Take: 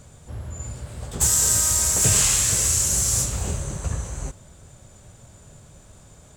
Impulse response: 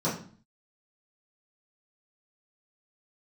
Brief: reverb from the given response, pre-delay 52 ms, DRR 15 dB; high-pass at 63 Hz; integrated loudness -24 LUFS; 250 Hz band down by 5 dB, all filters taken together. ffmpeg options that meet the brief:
-filter_complex "[0:a]highpass=63,equalizer=f=250:t=o:g=-9,asplit=2[s0][s1];[1:a]atrim=start_sample=2205,adelay=52[s2];[s1][s2]afir=irnorm=-1:irlink=0,volume=0.0531[s3];[s0][s3]amix=inputs=2:normalize=0,volume=0.531"

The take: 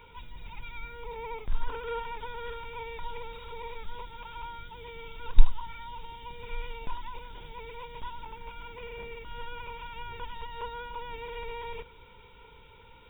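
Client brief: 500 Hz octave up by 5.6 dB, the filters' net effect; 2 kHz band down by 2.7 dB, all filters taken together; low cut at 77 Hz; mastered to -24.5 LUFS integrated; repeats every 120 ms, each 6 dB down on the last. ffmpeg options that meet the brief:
-af "highpass=77,equalizer=f=500:t=o:g=6,equalizer=f=2000:t=o:g=-4,aecho=1:1:120|240|360|480|600|720:0.501|0.251|0.125|0.0626|0.0313|0.0157,volume=5.01"

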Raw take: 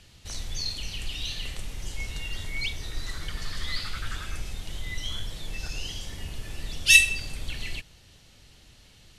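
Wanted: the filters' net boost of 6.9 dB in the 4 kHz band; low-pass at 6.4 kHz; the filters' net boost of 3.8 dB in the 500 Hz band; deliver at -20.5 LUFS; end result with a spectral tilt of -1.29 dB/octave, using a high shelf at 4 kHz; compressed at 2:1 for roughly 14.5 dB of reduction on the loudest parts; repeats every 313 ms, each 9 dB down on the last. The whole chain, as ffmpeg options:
-af "lowpass=6400,equalizer=f=500:t=o:g=4.5,highshelf=f=4000:g=7,equalizer=f=4000:t=o:g=5,acompressor=threshold=0.0224:ratio=2,aecho=1:1:313|626|939|1252:0.355|0.124|0.0435|0.0152,volume=3.98"

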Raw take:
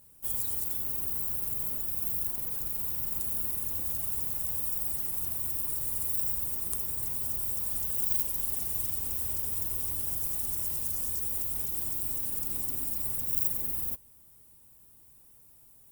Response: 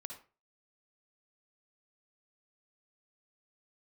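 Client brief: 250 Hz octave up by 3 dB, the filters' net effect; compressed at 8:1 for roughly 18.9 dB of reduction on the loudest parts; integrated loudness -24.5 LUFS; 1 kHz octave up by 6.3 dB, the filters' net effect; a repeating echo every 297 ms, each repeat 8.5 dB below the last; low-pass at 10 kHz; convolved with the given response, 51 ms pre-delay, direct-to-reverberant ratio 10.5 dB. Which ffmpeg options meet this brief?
-filter_complex "[0:a]lowpass=10000,equalizer=f=250:t=o:g=3.5,equalizer=f=1000:t=o:g=7.5,acompressor=threshold=0.00251:ratio=8,aecho=1:1:297|594|891|1188:0.376|0.143|0.0543|0.0206,asplit=2[s0][s1];[1:a]atrim=start_sample=2205,adelay=51[s2];[s1][s2]afir=irnorm=-1:irlink=0,volume=0.447[s3];[s0][s3]amix=inputs=2:normalize=0,volume=25.1"

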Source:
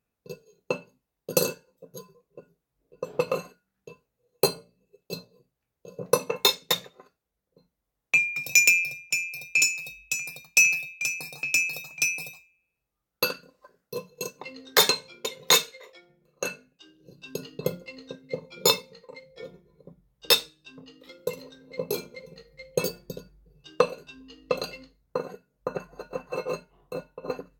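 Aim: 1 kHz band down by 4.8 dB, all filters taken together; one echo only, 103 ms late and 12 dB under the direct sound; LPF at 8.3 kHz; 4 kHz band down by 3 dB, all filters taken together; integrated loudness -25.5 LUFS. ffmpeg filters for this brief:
-af "lowpass=8300,equalizer=f=1000:t=o:g=-5.5,equalizer=f=4000:t=o:g=-3,aecho=1:1:103:0.251,volume=1.26"

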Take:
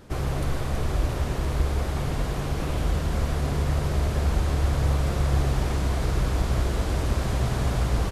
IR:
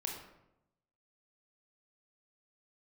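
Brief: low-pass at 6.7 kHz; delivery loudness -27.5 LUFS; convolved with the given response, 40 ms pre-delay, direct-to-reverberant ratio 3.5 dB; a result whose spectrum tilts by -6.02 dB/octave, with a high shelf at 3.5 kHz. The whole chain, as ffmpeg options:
-filter_complex "[0:a]lowpass=6700,highshelf=f=3500:g=4.5,asplit=2[s0][s1];[1:a]atrim=start_sample=2205,adelay=40[s2];[s1][s2]afir=irnorm=-1:irlink=0,volume=0.631[s3];[s0][s3]amix=inputs=2:normalize=0,volume=0.75"

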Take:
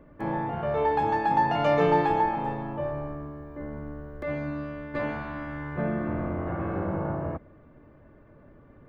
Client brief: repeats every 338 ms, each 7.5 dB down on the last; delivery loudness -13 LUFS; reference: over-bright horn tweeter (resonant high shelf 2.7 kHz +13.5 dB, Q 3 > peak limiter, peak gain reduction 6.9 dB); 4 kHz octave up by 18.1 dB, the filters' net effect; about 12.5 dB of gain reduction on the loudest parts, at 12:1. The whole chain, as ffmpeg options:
-af "equalizer=f=4000:t=o:g=4,acompressor=threshold=0.0316:ratio=12,highshelf=f=2700:t=q:w=3:g=13.5,aecho=1:1:338|676|1014|1352|1690:0.422|0.177|0.0744|0.0312|0.0131,volume=15.8,alimiter=limit=0.668:level=0:latency=1"

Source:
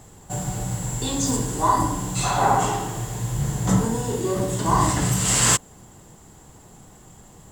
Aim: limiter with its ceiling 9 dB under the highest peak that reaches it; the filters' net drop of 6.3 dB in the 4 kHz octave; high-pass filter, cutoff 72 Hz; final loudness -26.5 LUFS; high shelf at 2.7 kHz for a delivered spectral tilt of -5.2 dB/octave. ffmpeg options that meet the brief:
-af "highpass=72,highshelf=f=2700:g=-5.5,equalizer=f=4000:t=o:g=-3.5,alimiter=limit=0.15:level=0:latency=1"

